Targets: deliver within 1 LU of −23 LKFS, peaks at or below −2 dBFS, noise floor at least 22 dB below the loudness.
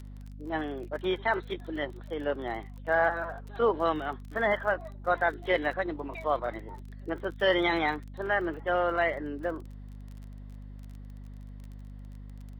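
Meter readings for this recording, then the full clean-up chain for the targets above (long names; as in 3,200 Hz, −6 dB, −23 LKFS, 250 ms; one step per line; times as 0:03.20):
crackle rate 28 per second; mains hum 50 Hz; hum harmonics up to 250 Hz; level of the hum −41 dBFS; integrated loudness −30.0 LKFS; sample peak −13.5 dBFS; target loudness −23.0 LKFS
→ click removal
hum removal 50 Hz, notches 5
level +7 dB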